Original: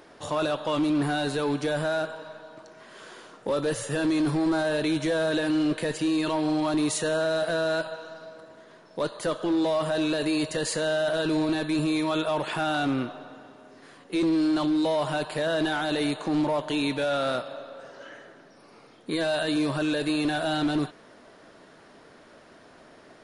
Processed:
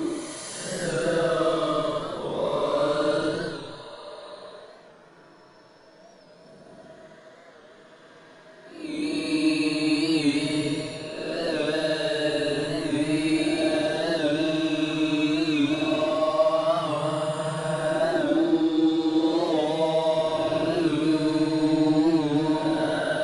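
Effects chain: slices in reverse order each 0.191 s, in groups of 5; Paulstretch 12×, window 0.10 s, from 8.79; record warp 45 rpm, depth 100 cents; gain +1.5 dB

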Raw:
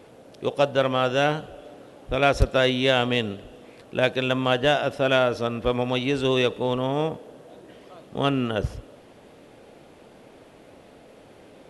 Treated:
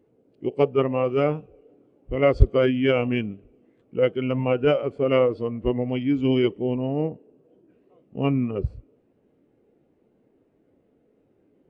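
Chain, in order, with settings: formant shift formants -3 st; low shelf 480 Hz +2.5 dB; spectral expander 1.5:1; gain +2 dB

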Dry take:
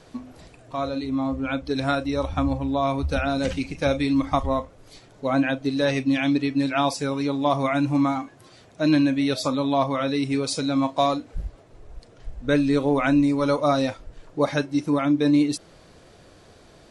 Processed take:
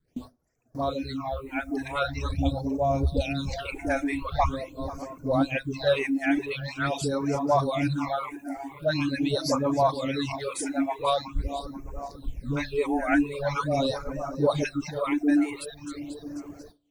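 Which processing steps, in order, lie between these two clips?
regenerating reverse delay 0.245 s, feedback 66%, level -11.5 dB; 2.28–3.51 band shelf 1400 Hz -11.5 dB 1.3 oct; dispersion highs, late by 82 ms, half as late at 490 Hz; dynamic EQ 240 Hz, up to -6 dB, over -35 dBFS, Q 1.4; bit-crush 10-bit; gate with hold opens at -33 dBFS; phaser stages 8, 0.44 Hz, lowest notch 140–3700 Hz; reverb removal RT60 0.87 s; gain +1.5 dB

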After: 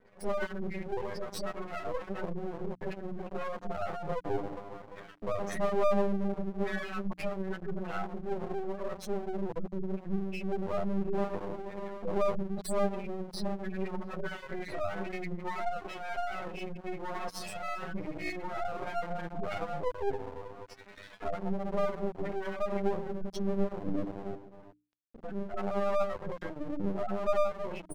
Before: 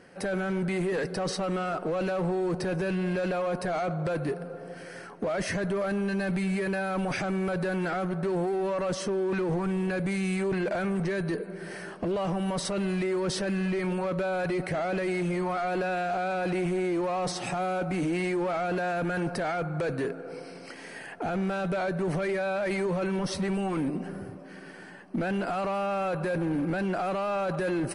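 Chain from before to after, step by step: high shelf 4800 Hz +10 dB; vocal rider within 4 dB 0.5 s; resonator 100 Hz, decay 0.27 s, harmonics all, mix 100%; 0.64–1.95 low shelf 200 Hz -3.5 dB; reverb RT60 0.75 s, pre-delay 5 ms, DRR -5 dB; spectral gate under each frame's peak -10 dB strong; 24.35–25.54 resonator 220 Hz, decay 0.82 s, mix 60%; outdoor echo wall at 120 m, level -27 dB; half-wave rectifier; notches 60/120/180/240/300 Hz; gain +2 dB

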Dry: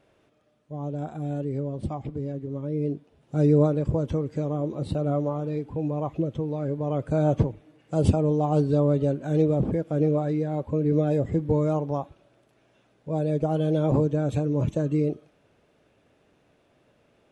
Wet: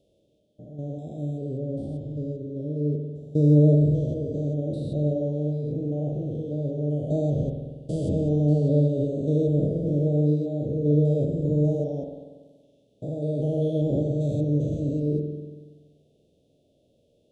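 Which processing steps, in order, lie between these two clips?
stepped spectrum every 0.2 s; elliptic band-stop 590–3400 Hz, stop band 80 dB; spring tank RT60 1.4 s, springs 47 ms, chirp 50 ms, DRR 3 dB

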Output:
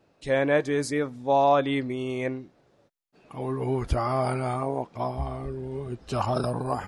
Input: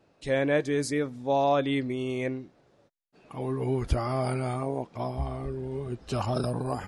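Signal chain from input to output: dynamic EQ 1000 Hz, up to +6 dB, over -39 dBFS, Q 0.88

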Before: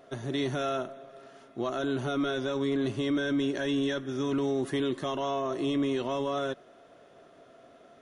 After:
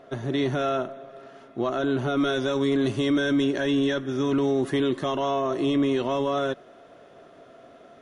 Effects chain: high shelf 5200 Hz -11.5 dB, from 2.17 s +2 dB, from 3.44 s -5.5 dB; gain +5.5 dB

